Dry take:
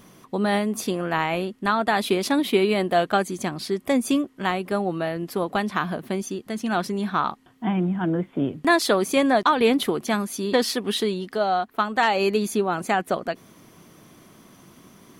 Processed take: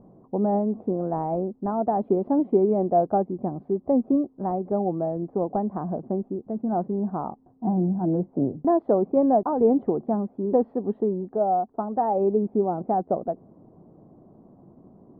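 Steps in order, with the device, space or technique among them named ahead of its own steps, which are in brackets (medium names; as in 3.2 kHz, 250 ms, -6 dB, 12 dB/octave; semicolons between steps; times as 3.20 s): under water (low-pass 710 Hz 24 dB/octave; peaking EQ 800 Hz +5 dB 0.53 oct)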